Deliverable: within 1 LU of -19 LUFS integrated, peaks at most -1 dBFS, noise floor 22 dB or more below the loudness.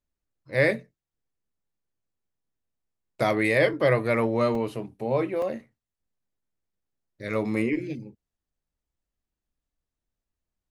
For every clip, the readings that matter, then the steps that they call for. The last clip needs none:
dropouts 2; longest dropout 2.4 ms; loudness -25.5 LUFS; peak level -8.0 dBFS; loudness target -19.0 LUFS
-> interpolate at 4.55/5.42 s, 2.4 ms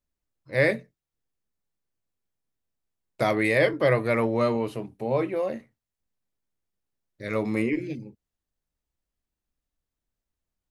dropouts 0; loudness -25.5 LUFS; peak level -8.0 dBFS; loudness target -19.0 LUFS
-> trim +6.5 dB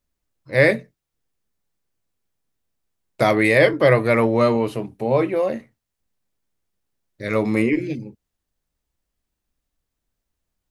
loudness -19.0 LUFS; peak level -1.5 dBFS; noise floor -82 dBFS

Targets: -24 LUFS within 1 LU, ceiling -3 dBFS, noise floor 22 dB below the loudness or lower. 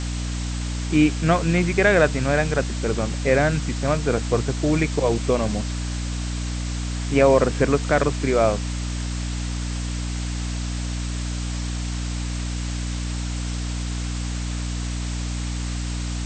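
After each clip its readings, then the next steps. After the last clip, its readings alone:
hum 60 Hz; highest harmonic 300 Hz; hum level -24 dBFS; noise floor -27 dBFS; noise floor target -46 dBFS; loudness -23.5 LUFS; peak level -3.5 dBFS; loudness target -24.0 LUFS
-> hum notches 60/120/180/240/300 Hz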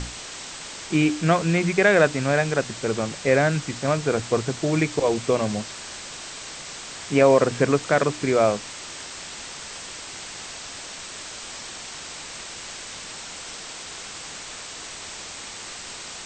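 hum not found; noise floor -38 dBFS; noise floor target -47 dBFS
-> noise print and reduce 9 dB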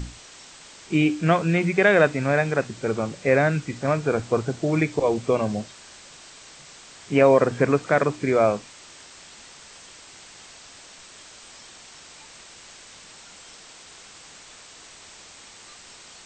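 noise floor -47 dBFS; loudness -22.0 LUFS; peak level -4.0 dBFS; loudness target -24.0 LUFS
-> trim -2 dB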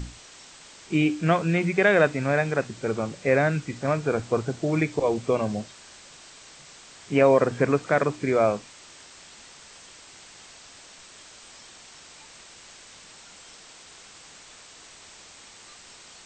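loudness -24.0 LUFS; peak level -6.0 dBFS; noise floor -49 dBFS

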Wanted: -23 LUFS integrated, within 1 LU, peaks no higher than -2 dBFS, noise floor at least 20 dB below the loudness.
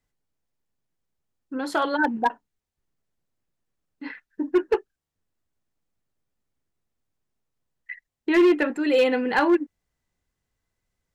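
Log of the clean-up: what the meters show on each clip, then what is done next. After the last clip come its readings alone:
clipped samples 0.6%; clipping level -13.0 dBFS; loudness -23.0 LUFS; peak level -13.0 dBFS; loudness target -23.0 LUFS
-> clip repair -13 dBFS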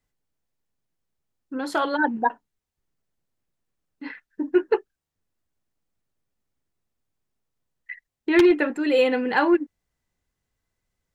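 clipped samples 0.0%; loudness -22.0 LUFS; peak level -4.0 dBFS; loudness target -23.0 LUFS
-> trim -1 dB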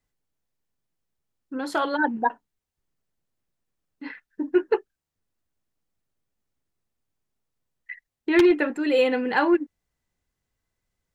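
loudness -23.0 LUFS; peak level -5.0 dBFS; noise floor -85 dBFS

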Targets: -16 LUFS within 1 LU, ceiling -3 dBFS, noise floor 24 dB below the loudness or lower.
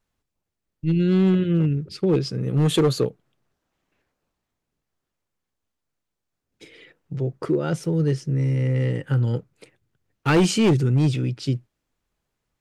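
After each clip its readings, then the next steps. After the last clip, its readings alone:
clipped samples 1.1%; clipping level -13.0 dBFS; dropouts 1; longest dropout 2.1 ms; loudness -22.0 LUFS; peak level -13.0 dBFS; loudness target -16.0 LUFS
-> clip repair -13 dBFS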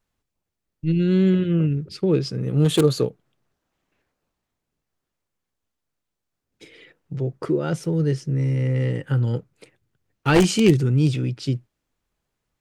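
clipped samples 0.0%; dropouts 1; longest dropout 2.1 ms
-> interpolate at 7.84 s, 2.1 ms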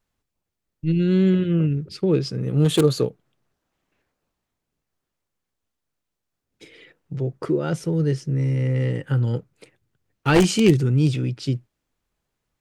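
dropouts 0; loudness -21.5 LUFS; peak level -4.0 dBFS; loudness target -16.0 LUFS
-> trim +5.5 dB; peak limiter -3 dBFS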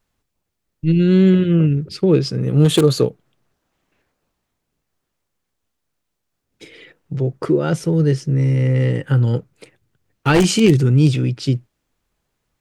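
loudness -16.5 LUFS; peak level -3.0 dBFS; noise floor -76 dBFS

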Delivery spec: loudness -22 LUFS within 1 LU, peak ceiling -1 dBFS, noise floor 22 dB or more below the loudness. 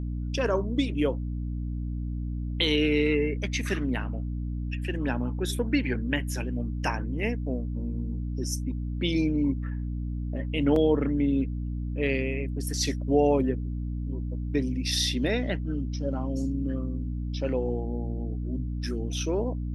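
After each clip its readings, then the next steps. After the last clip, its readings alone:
dropouts 1; longest dropout 2.4 ms; hum 60 Hz; highest harmonic 300 Hz; hum level -29 dBFS; loudness -28.5 LUFS; peak level -10.5 dBFS; loudness target -22.0 LUFS
-> interpolate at 10.76 s, 2.4 ms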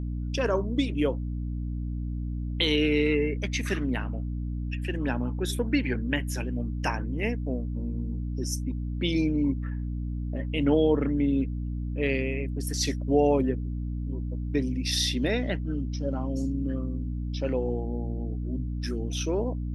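dropouts 0; hum 60 Hz; highest harmonic 300 Hz; hum level -29 dBFS
-> de-hum 60 Hz, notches 5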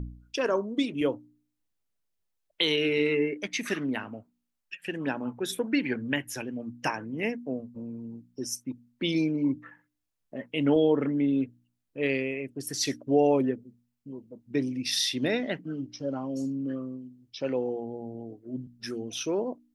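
hum not found; loudness -29.5 LUFS; peak level -10.5 dBFS; loudness target -22.0 LUFS
-> trim +7.5 dB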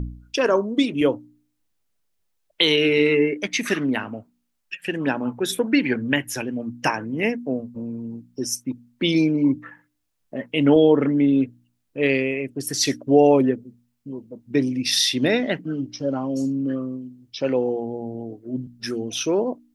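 loudness -22.0 LUFS; peak level -3.0 dBFS; noise floor -72 dBFS

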